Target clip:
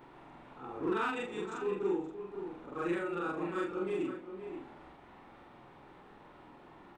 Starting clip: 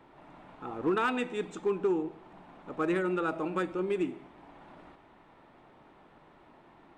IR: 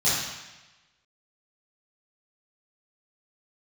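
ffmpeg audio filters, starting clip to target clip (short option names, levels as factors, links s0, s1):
-filter_complex "[0:a]afftfilt=real='re':imag='-im':win_size=4096:overlap=0.75,bandreject=f=640:w=12,acompressor=mode=upward:threshold=0.00447:ratio=2.5,asplit=2[s0][s1];[s1]adelay=524.8,volume=0.355,highshelf=f=4000:g=-11.8[s2];[s0][s2]amix=inputs=2:normalize=0"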